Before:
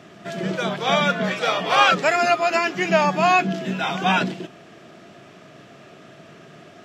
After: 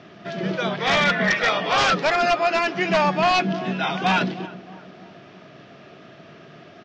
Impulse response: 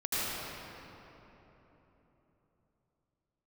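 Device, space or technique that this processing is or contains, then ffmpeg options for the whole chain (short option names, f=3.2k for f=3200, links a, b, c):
synthesiser wavefolder: -filter_complex "[0:a]lowpass=f=6.3k:w=0.5412,lowpass=f=6.3k:w=1.3066,asettb=1/sr,asplit=3[a][b][c];[a]atrim=end=0.784[d];[b]atrim=start=0.78:end=1.49,asetpts=PTS-STARTPTS,afade=t=in:d=0.004:c=qsin,afade=t=out:st=0.706:d=0.004:c=qsin,equalizer=f=1.9k:t=o:w=0.35:g=15[e];[c]atrim=start=1.486[f];[d][e]acrossfade=d=0.004:c1=hsin:c2=qsin[g];[g][f]acrossfade=d=0.004:c1=qsin:c2=hsin,asplit=2[h][i];[i]adelay=313,lowpass=f=1.2k:p=1,volume=-16dB,asplit=2[j][k];[k]adelay=313,lowpass=f=1.2k:p=1,volume=0.51,asplit=2[l][m];[m]adelay=313,lowpass=f=1.2k:p=1,volume=0.51,asplit=2[n][o];[o]adelay=313,lowpass=f=1.2k:p=1,volume=0.51,asplit=2[p][q];[q]adelay=313,lowpass=f=1.2k:p=1,volume=0.51[r];[h][j][l][n][p][r]amix=inputs=6:normalize=0,aeval=exprs='0.237*(abs(mod(val(0)/0.237+3,4)-2)-1)':c=same,lowpass=f=5.9k:w=0.5412,lowpass=f=5.9k:w=1.3066"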